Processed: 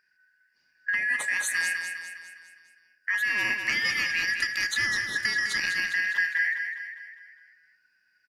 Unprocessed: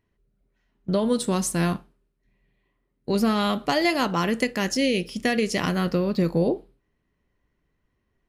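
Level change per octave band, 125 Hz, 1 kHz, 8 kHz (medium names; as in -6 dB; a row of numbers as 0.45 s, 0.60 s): -23.5 dB, -14.5 dB, -1.0 dB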